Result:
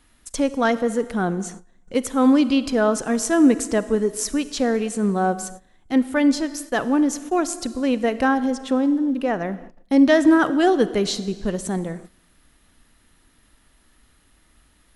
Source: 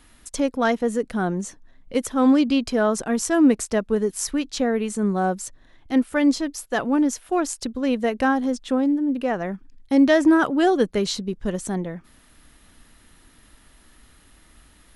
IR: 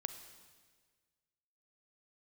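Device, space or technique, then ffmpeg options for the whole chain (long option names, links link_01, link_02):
keyed gated reverb: -filter_complex "[0:a]asplit=3[link_01][link_02][link_03];[1:a]atrim=start_sample=2205[link_04];[link_02][link_04]afir=irnorm=-1:irlink=0[link_05];[link_03]apad=whole_len=659545[link_06];[link_05][link_06]sidechaingate=range=-21dB:threshold=-42dB:ratio=16:detection=peak,volume=4dB[link_07];[link_01][link_07]amix=inputs=2:normalize=0,volume=-6dB"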